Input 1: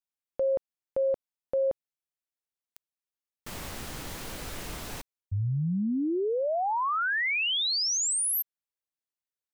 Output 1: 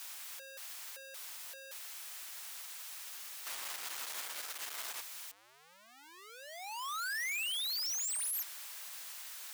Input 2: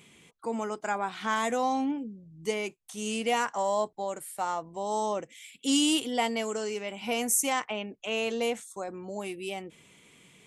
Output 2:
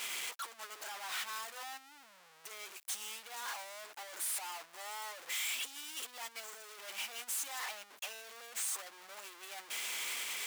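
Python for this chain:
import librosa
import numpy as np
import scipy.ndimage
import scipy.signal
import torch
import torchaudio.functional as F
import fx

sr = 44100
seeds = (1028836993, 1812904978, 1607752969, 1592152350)

y = np.sign(x) * np.sqrt(np.mean(np.square(x)))
y = scipy.signal.sosfilt(scipy.signal.butter(2, 930.0, 'highpass', fs=sr, output='sos'), y)
y = fx.upward_expand(y, sr, threshold_db=-41.0, expansion=2.5)
y = y * librosa.db_to_amplitude(-5.0)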